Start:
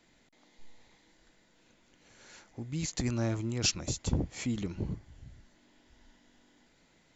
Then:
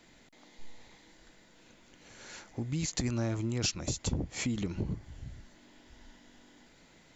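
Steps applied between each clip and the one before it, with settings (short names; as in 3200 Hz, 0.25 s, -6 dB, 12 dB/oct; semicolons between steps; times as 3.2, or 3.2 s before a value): compressor 3:1, threshold -37 dBFS, peak gain reduction 10.5 dB; gain +6 dB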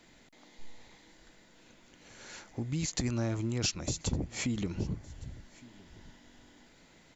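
echo 1.162 s -23 dB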